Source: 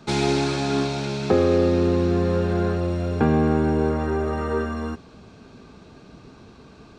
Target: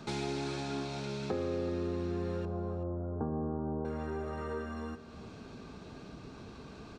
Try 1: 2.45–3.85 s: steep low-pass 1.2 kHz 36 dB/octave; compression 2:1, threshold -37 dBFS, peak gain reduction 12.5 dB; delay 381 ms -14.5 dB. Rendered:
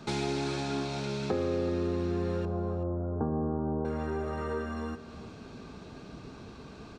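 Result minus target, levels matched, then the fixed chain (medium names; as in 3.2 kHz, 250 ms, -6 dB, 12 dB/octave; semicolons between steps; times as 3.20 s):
compression: peak gain reduction -4 dB
2.45–3.85 s: steep low-pass 1.2 kHz 36 dB/octave; compression 2:1, threshold -45.5 dBFS, peak gain reduction 17 dB; delay 381 ms -14.5 dB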